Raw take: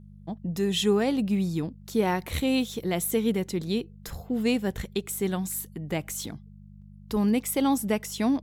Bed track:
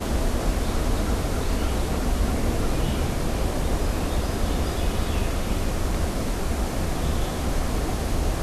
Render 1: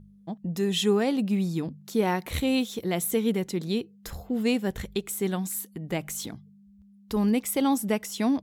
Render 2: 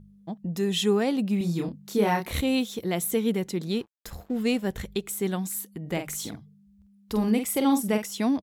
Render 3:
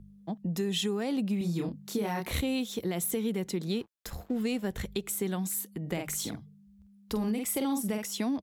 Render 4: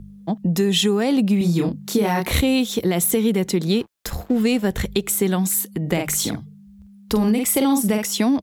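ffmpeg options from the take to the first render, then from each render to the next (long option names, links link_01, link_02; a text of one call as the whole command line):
ffmpeg -i in.wav -af "bandreject=frequency=50:width_type=h:width=4,bandreject=frequency=100:width_type=h:width=4,bandreject=frequency=150:width_type=h:width=4" out.wav
ffmpeg -i in.wav -filter_complex "[0:a]asettb=1/sr,asplit=3[link_01][link_02][link_03];[link_01]atrim=end=1.384[link_04];[link_02]atrim=start=1.38:end=2.41,asetpts=PTS-STARTPTS,afade=type=in:duration=0.004:curve=qsin,afade=type=out:start_time=1.026:duration=0.004:curve=qsin,asplit=2[link_05][link_06];[link_06]adelay=29,volume=-3dB[link_07];[link_05][link_07]amix=inputs=2:normalize=0,atrim=end_sample=45423[link_08];[link_03]atrim=start=2.406[link_09];[link_04][link_08]acrossfade=duration=0.004:curve1=hsin:curve2=qsin[link_10];[link_10][link_09]acrossfade=duration=0.004:curve1=qsin:curve2=hsin,asettb=1/sr,asplit=3[link_11][link_12][link_13];[link_11]atrim=end=3.714[link_14];[link_12]atrim=start=3.71:end=4.65,asetpts=PTS-STARTPTS,afade=type=in:duration=0.004:curve=qsin,afade=type=out:start_time=0.936:duration=0.004:curve=qsin,aeval=exprs='sgn(val(0))*max(abs(val(0))-0.00355,0)':channel_layout=same[link_15];[link_13]atrim=start=4.646[link_16];[link_14][link_15]acrossfade=duration=0.004:curve1=hsin:curve2=qsin[link_17];[link_17][link_16]acrossfade=duration=0.004:curve1=qsin:curve2=hsin,asplit=3[link_18][link_19][link_20];[link_18]afade=type=out:start_time=5.84:duration=0.02[link_21];[link_19]asplit=2[link_22][link_23];[link_23]adelay=47,volume=-7dB[link_24];[link_22][link_24]amix=inputs=2:normalize=0,afade=type=in:start_time=5.84:duration=0.02,afade=type=out:start_time=8.02:duration=0.02[link_25];[link_20]afade=type=in:start_time=8.02:duration=0.02[link_26];[link_21][link_25][link_26]amix=inputs=3:normalize=0" out.wav
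ffmpeg -i in.wav -filter_complex "[0:a]acrossover=split=170|4400[link_01][link_02][link_03];[link_02]alimiter=limit=-20dB:level=0:latency=1:release=32[link_04];[link_01][link_04][link_03]amix=inputs=3:normalize=0,acompressor=threshold=-27dB:ratio=6" out.wav
ffmpeg -i in.wav -af "volume=12dB" out.wav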